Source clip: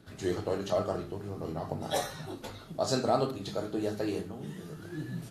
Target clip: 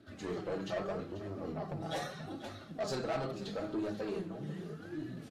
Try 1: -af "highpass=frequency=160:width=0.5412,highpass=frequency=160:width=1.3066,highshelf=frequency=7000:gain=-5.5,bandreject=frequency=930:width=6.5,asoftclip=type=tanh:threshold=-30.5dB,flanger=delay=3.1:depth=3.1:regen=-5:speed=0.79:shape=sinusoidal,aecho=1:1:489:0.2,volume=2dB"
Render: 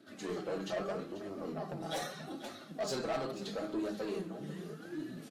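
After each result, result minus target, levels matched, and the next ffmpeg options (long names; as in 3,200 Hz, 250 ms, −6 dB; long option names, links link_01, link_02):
8,000 Hz band +4.5 dB; 125 Hz band −4.0 dB
-af "highpass=frequency=160:width=0.5412,highpass=frequency=160:width=1.3066,highshelf=frequency=7000:gain=-15,bandreject=frequency=930:width=6.5,asoftclip=type=tanh:threshold=-30.5dB,flanger=delay=3.1:depth=3.1:regen=-5:speed=0.79:shape=sinusoidal,aecho=1:1:489:0.2,volume=2dB"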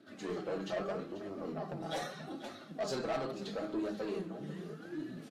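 125 Hz band −3.5 dB
-af "highpass=frequency=67:width=0.5412,highpass=frequency=67:width=1.3066,highshelf=frequency=7000:gain=-15,bandreject=frequency=930:width=6.5,asoftclip=type=tanh:threshold=-30.5dB,flanger=delay=3.1:depth=3.1:regen=-5:speed=0.79:shape=sinusoidal,aecho=1:1:489:0.2,volume=2dB"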